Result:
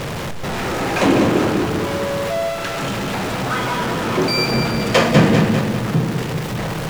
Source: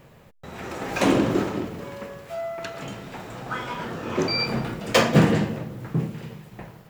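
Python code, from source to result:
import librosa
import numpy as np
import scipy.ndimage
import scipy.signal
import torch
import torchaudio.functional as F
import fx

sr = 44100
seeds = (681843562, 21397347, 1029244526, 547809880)

y = x + 0.5 * 10.0 ** (-22.0 / 20.0) * np.sign(x)
y = fx.high_shelf(y, sr, hz=9200.0, db=-11.5)
y = fx.echo_crushed(y, sr, ms=198, feedback_pct=55, bits=7, wet_db=-6.0)
y = y * librosa.db_to_amplitude(2.5)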